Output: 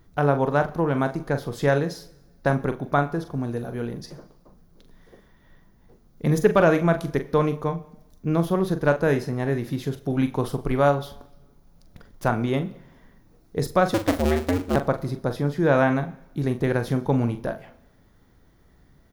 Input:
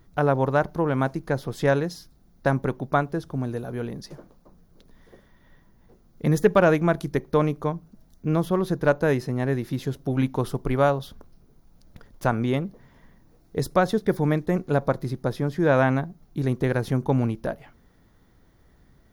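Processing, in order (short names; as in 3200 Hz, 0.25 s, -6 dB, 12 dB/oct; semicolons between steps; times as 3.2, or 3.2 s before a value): 13.94–14.76 cycle switcher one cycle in 2, inverted; doubler 42 ms -9.5 dB; two-slope reverb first 0.83 s, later 2.4 s, from -24 dB, DRR 15 dB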